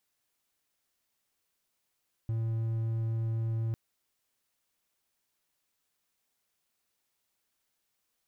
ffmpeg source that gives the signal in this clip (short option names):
-f lavfi -i "aevalsrc='0.0473*(1-4*abs(mod(113*t+0.25,1)-0.5))':d=1.45:s=44100"